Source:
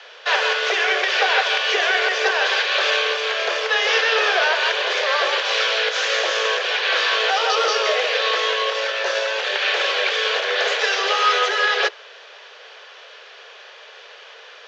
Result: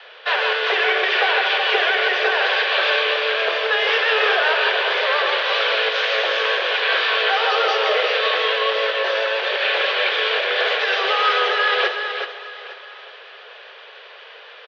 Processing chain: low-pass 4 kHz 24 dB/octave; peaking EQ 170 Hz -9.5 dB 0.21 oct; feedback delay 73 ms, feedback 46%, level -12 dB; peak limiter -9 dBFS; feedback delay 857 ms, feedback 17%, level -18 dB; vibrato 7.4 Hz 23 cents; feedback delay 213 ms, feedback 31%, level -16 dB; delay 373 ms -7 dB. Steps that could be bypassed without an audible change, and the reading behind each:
peaking EQ 170 Hz: input has nothing below 320 Hz

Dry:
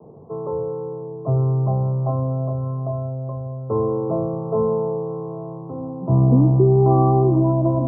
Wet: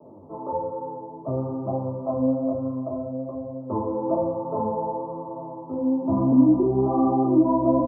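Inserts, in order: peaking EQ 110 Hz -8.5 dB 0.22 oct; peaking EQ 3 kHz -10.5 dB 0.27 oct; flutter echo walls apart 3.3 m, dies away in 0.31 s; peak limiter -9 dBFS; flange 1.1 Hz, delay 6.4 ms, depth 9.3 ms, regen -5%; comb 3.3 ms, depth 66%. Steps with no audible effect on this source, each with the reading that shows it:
peaking EQ 3 kHz: input has nothing above 1.1 kHz

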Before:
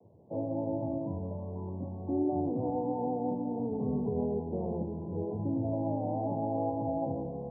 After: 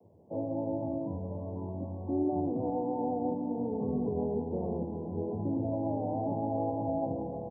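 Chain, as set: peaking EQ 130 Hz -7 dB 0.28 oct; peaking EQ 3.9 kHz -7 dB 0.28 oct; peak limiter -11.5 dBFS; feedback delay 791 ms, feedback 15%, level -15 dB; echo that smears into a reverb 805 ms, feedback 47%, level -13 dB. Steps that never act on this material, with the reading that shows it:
peaking EQ 3.9 kHz: input has nothing above 1 kHz; peak limiter -11.5 dBFS: peak at its input -20.0 dBFS

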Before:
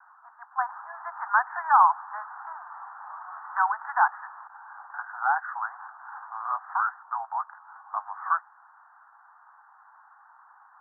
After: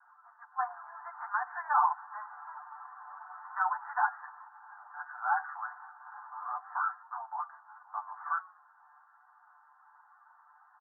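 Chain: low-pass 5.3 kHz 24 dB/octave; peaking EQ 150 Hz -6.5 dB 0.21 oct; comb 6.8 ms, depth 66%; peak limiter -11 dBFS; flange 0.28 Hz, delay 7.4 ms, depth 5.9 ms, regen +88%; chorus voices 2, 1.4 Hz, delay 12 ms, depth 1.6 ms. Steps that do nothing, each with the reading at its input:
low-pass 5.3 kHz: input has nothing above 1.9 kHz; peaking EQ 150 Hz: input has nothing below 600 Hz

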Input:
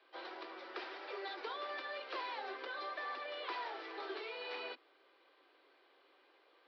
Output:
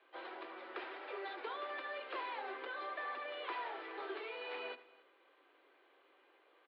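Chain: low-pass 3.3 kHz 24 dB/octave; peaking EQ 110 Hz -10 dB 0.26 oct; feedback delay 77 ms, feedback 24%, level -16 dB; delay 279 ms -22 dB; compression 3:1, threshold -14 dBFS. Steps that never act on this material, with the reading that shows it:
peaking EQ 110 Hz: input has nothing below 240 Hz; compression, threshold -14 dBFS: peak at its input -27.5 dBFS

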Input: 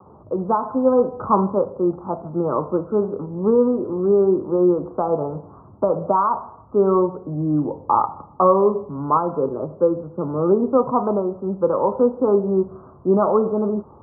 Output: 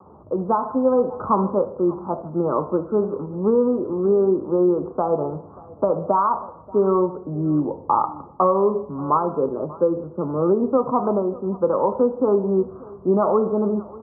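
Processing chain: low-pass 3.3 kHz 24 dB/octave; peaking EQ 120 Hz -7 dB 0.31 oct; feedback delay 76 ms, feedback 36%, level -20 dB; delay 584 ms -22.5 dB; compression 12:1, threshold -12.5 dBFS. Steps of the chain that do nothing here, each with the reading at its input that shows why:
low-pass 3.3 kHz: input has nothing above 1.4 kHz

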